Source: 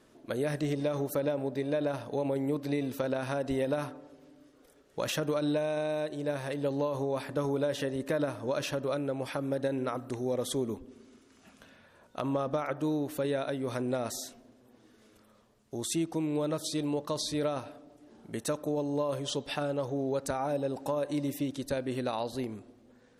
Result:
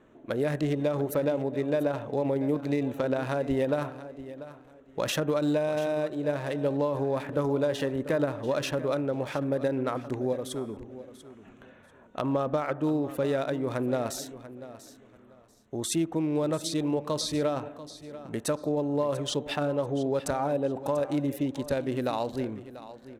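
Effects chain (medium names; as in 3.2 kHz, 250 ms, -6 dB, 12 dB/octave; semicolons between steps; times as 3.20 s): local Wiener filter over 9 samples; 10.33–10.77 s: feedback comb 150 Hz, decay 1.6 s, mix 50%; on a send: feedback delay 690 ms, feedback 22%, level -15 dB; on the sum: trim +3.5 dB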